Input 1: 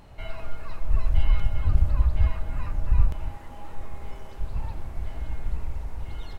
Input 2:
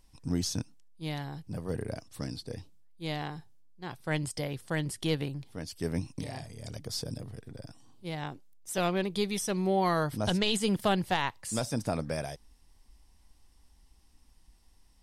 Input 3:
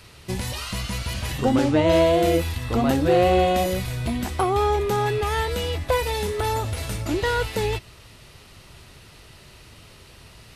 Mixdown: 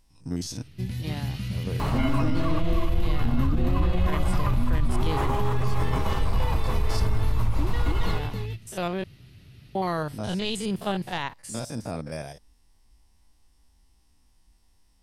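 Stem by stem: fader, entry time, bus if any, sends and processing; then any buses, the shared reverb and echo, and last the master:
−4.0 dB, 1.80 s, no send, echo send −13 dB, parametric band 1,100 Hz +10.5 dB 0.45 octaves; envelope flattener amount 70%
+0.5 dB, 0.00 s, muted 0:09.04–0:09.75, no send, no echo send, spectrum averaged block by block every 50 ms
+2.0 dB, 0.50 s, no send, echo send −13 dB, graphic EQ with 10 bands 125 Hz +10 dB, 250 Hz +5 dB, 500 Hz −6 dB, 1,000 Hz −12 dB, 8,000 Hz −11 dB; automatic ducking −11 dB, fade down 0.80 s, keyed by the second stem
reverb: not used
echo: single-tap delay 275 ms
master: brickwall limiter −14 dBFS, peak gain reduction 7.5 dB

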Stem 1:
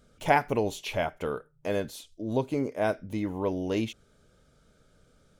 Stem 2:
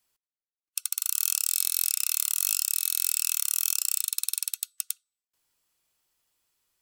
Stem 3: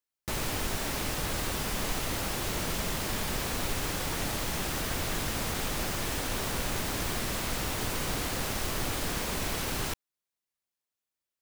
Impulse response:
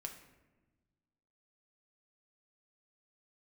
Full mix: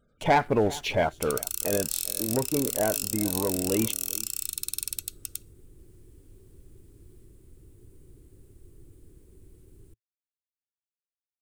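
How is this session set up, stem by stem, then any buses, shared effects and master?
−2.5 dB, 0.00 s, no send, echo send −20 dB, gate on every frequency bin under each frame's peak −25 dB strong; leveller curve on the samples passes 2
−2.0 dB, 0.45 s, send −16 dB, no echo send, no processing
−15.0 dB, 0.00 s, no send, no echo send, drawn EQ curve 110 Hz 0 dB, 220 Hz −12 dB, 370 Hz 0 dB, 670 Hz −29 dB, 5,800 Hz −26 dB, 8,800 Hz −12 dB, 14,000 Hz −18 dB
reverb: on, RT60 1.2 s, pre-delay 6 ms
echo: single-tap delay 396 ms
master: brickwall limiter −12.5 dBFS, peak gain reduction 7.5 dB

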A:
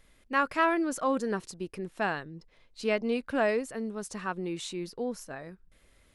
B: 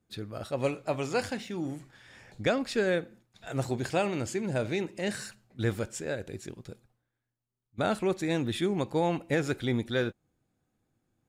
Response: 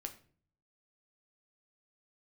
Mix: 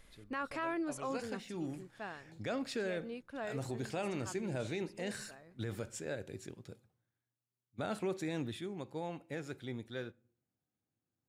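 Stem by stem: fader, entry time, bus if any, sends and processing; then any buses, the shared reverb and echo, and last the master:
+1.0 dB, 0.00 s, no send, automatic ducking −16 dB, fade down 1.50 s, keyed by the second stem
0:00.81 −20 dB → 0:01.58 −8 dB → 0:08.38 −8 dB → 0:08.62 −15.5 dB, 0.00 s, send −9.5 dB, high-pass filter 75 Hz 24 dB per octave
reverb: on, RT60 0.45 s, pre-delay 7 ms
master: brickwall limiter −28.5 dBFS, peak gain reduction 11 dB

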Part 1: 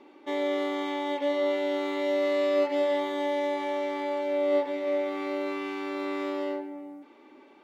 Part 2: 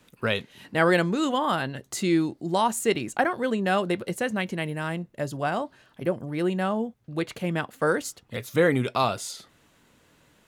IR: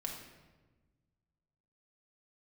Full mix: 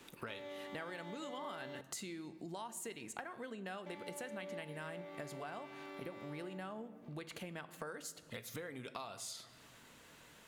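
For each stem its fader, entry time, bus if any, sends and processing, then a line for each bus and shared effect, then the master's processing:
−7.0 dB, 0.00 s, muted 0:01.81–0:03.86, no send, elliptic high-pass filter 190 Hz; high-shelf EQ 11,000 Hz +10.5 dB
+0.5 dB, 0.00 s, send −8.5 dB, downward compressor, threshold −30 dBFS, peak gain reduction 13.5 dB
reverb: on, RT60 1.3 s, pre-delay 4 ms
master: low-shelf EQ 470 Hz −7.5 dB; downward compressor 2.5 to 1, threshold −49 dBFS, peak gain reduction 15 dB

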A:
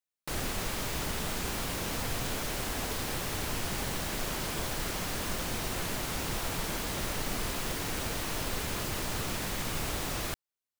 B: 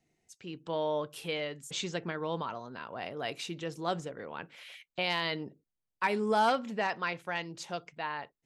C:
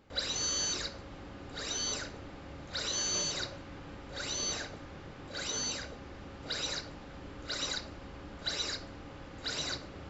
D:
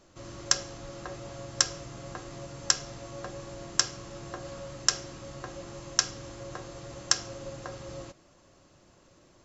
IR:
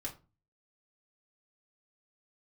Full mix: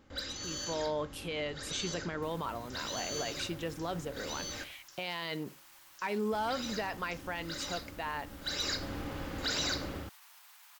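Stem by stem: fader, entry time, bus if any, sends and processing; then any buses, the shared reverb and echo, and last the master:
−17.0 dB, 1.95 s, bus B, no send, parametric band 16,000 Hz +9 dB 0.44 octaves
−7.5 dB, 0.00 s, bus A, no send, no processing
−1.5 dB, 0.00 s, muted 0:04.64–0:06.32, bus A, send −6 dB, hard clipping −26.5 dBFS, distortion −26 dB; automatic ducking −17 dB, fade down 0.40 s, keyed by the second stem
−15.0 dB, 0.00 s, bus B, send −19 dB, no processing
bus A: 0.0 dB, automatic gain control gain up to 8 dB; brickwall limiter −25.5 dBFS, peak gain reduction 9 dB
bus B: 0.0 dB, Butterworth high-pass 820 Hz 36 dB per octave; brickwall limiter −48 dBFS, peak gain reduction 27 dB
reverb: on, RT60 0.30 s, pre-delay 3 ms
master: no processing

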